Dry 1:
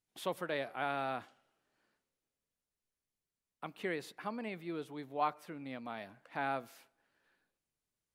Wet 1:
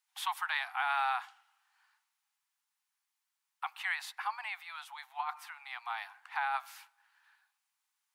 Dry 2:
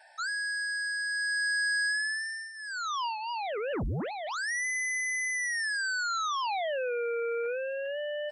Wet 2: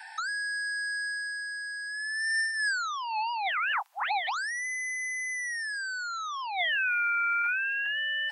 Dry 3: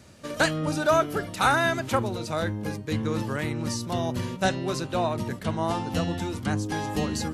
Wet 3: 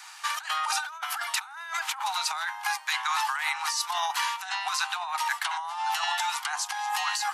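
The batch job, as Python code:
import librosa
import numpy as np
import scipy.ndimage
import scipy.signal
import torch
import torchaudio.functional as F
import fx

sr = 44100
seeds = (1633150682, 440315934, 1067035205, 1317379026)

y = scipy.signal.sosfilt(scipy.signal.butter(16, 780.0, 'highpass', fs=sr, output='sos'), x)
y = fx.high_shelf(y, sr, hz=2500.0, db=-3.5)
y = fx.over_compress(y, sr, threshold_db=-40.0, ratio=-1.0)
y = y * 10.0 ** (8.5 / 20.0)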